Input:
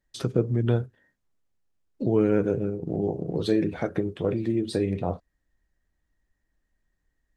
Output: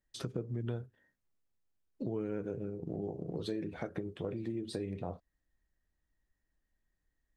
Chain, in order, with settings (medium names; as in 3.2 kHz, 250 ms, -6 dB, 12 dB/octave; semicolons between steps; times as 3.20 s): compression 3:1, threshold -29 dBFS, peak gain reduction 10 dB; trim -6.5 dB